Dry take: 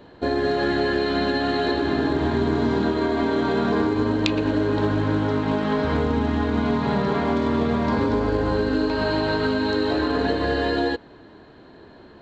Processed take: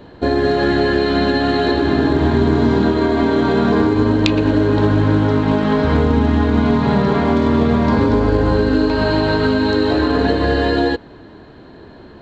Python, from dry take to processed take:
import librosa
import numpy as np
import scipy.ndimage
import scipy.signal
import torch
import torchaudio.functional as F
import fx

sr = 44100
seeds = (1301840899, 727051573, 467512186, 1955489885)

y = fx.low_shelf(x, sr, hz=220.0, db=5.5)
y = y * librosa.db_to_amplitude(5.0)